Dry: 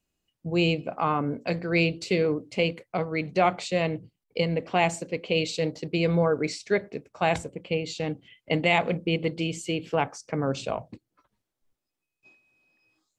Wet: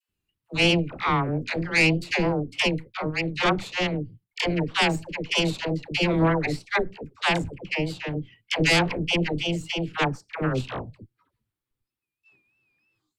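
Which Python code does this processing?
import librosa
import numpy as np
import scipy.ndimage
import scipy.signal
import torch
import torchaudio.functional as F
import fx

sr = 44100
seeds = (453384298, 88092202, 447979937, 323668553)

y = fx.graphic_eq_15(x, sr, hz=(100, 250, 630, 6300), db=(7, -3, -11, -9))
y = fx.cheby_harmonics(y, sr, harmonics=(5, 7, 8), levels_db=(-21, -24, -8), full_scale_db=-4.5)
y = fx.vibrato(y, sr, rate_hz=3.2, depth_cents=86.0)
y = fx.dispersion(y, sr, late='lows', ms=90.0, hz=650.0)
y = y * librosa.db_to_amplitude(-1.5)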